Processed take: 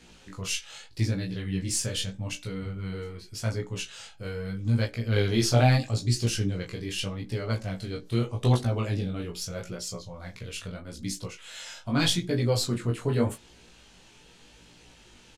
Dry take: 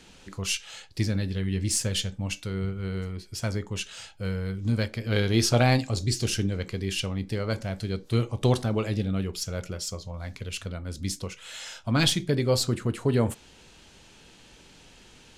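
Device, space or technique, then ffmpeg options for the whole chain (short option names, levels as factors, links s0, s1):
double-tracked vocal: -filter_complex "[0:a]asplit=2[s0][s1];[s1]adelay=17,volume=0.562[s2];[s0][s2]amix=inputs=2:normalize=0,flanger=delay=16.5:depth=7.4:speed=0.81"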